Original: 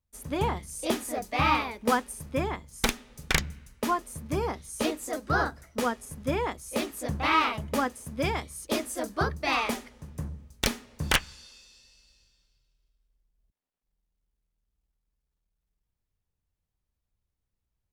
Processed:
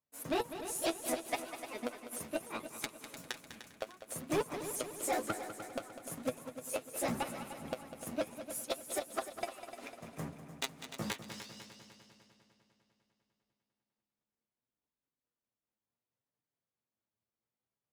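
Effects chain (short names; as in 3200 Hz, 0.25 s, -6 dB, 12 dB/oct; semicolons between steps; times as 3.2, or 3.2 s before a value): repeated pitch sweeps +3 st, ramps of 0.216 s; HPF 240 Hz 12 dB/oct; high shelf 6000 Hz -4 dB; notches 50/100/150/200/250/300/350/400/450 Hz; sample leveller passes 1; flipped gate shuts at -18 dBFS, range -35 dB; flange 0.67 Hz, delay 6.6 ms, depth 3.1 ms, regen +40%; soft clip -33 dBFS, distortion -9 dB; multi-head echo 0.1 s, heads second and third, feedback 60%, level -11.5 dB; mismatched tape noise reduction decoder only; gain +6 dB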